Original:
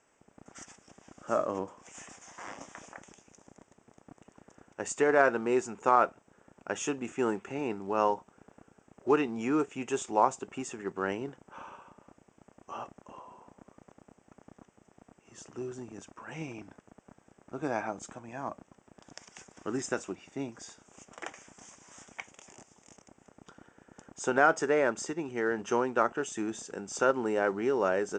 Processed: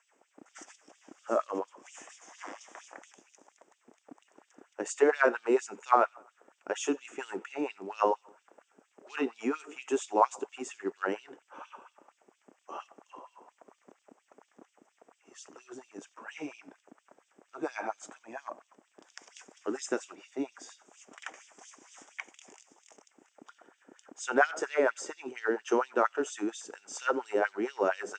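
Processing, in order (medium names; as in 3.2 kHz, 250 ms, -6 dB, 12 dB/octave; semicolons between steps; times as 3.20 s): bucket-brigade echo 89 ms, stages 4096, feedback 42%, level -22.5 dB; LFO high-pass sine 4.3 Hz 270–3700 Hz; trim -2.5 dB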